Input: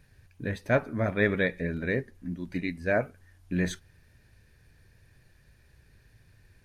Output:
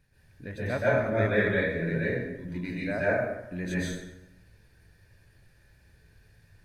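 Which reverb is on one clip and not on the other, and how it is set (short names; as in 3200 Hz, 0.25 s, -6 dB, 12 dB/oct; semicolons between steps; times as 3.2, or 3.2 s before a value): plate-style reverb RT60 0.93 s, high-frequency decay 0.7×, pre-delay 0.115 s, DRR -8.5 dB; gain -8 dB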